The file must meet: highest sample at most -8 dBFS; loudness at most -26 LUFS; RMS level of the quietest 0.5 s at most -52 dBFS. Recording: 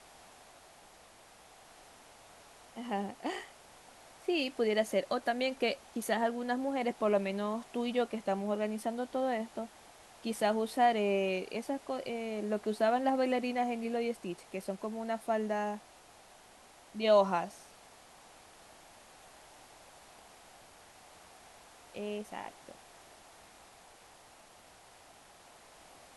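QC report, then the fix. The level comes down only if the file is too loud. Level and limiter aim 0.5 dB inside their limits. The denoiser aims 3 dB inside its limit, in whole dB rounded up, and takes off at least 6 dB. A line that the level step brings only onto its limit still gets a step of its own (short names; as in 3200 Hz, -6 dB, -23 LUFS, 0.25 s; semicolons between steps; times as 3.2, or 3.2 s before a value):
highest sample -14.5 dBFS: OK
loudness -33.5 LUFS: OK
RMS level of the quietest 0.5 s -58 dBFS: OK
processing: none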